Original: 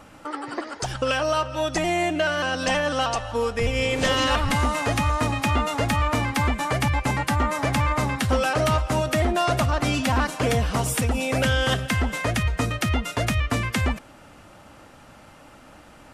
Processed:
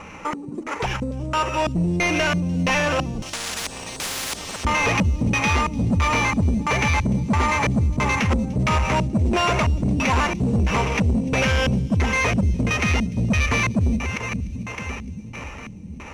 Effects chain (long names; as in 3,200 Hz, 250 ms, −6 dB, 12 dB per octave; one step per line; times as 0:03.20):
feedback delay that plays each chunk backwards 517 ms, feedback 60%, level −13 dB
EQ curve with evenly spaced ripples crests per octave 0.82, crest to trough 8 dB
in parallel at −2.5 dB: brickwall limiter −17.5 dBFS, peak gain reduction 7.5 dB
on the sum: auto-filter low-pass square 1.5 Hz 210–2,600 Hz
sample-rate reduction 8,400 Hz, jitter 0%
soft clipping −17.5 dBFS, distortion −10 dB
high-frequency loss of the air 97 metres
delay with a high-pass on its return 297 ms, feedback 62%, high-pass 4,300 Hz, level −17 dB
0:03.22–0:04.65: every bin compressed towards the loudest bin 10 to 1
level +2.5 dB